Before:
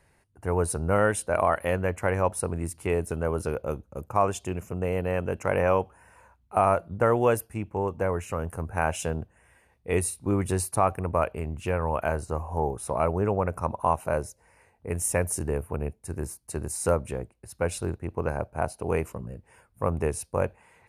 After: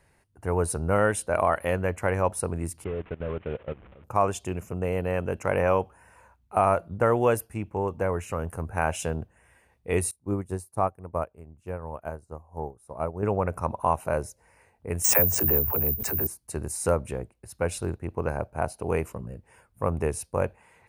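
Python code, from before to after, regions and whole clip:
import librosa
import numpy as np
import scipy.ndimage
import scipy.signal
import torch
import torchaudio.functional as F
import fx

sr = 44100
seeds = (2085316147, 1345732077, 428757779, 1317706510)

y = fx.chain(x, sr, fx.delta_mod(bps=16000, step_db=-37.5),
    fx.level_steps(step_db=15),
    fx.upward_expand(threshold_db=-40.0, expansion=1.5), at=(2.84, 4.04))
y = fx.chain(y, sr, fx.peak_eq(hz=2700.0, db=-9.0, octaves=1.7),
    fx.upward_expand(threshold_db=-34.0, expansion=2.5), at=(10.11, 13.23))
y = fx.chain(y, sr, fx.dispersion(late='lows', ms=56.0, hz=360.0),
    fx.resample_bad(factor=3, down='filtered', up='zero_stuff'),
    fx.pre_swell(db_per_s=28.0), at=(15.04, 16.27))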